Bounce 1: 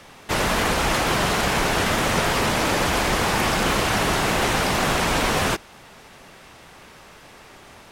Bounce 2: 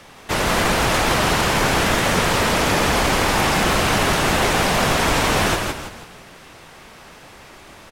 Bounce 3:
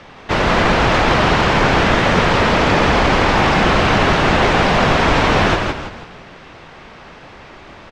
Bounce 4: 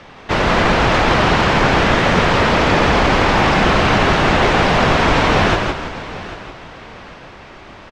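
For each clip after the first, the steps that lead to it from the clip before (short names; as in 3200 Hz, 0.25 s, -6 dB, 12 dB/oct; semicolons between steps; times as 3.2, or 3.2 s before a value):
frequency-shifting echo 0.164 s, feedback 40%, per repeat -63 Hz, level -4 dB; gain +1.5 dB
air absorption 170 m; gain +5.5 dB
feedback echo 0.794 s, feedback 31%, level -16 dB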